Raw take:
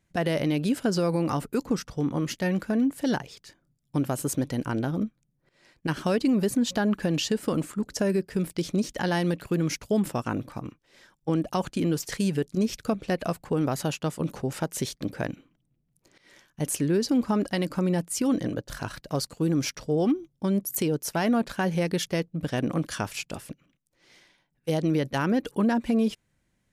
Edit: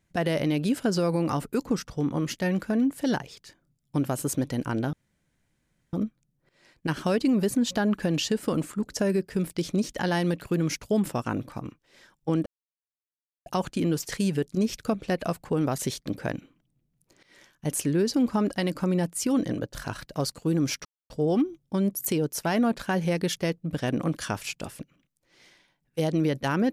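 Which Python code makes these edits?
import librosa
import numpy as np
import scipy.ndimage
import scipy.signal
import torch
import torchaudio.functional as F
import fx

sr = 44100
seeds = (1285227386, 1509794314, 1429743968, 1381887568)

y = fx.edit(x, sr, fx.insert_room_tone(at_s=4.93, length_s=1.0),
    fx.insert_silence(at_s=11.46, length_s=1.0),
    fx.cut(start_s=13.78, length_s=0.95),
    fx.insert_silence(at_s=19.8, length_s=0.25), tone=tone)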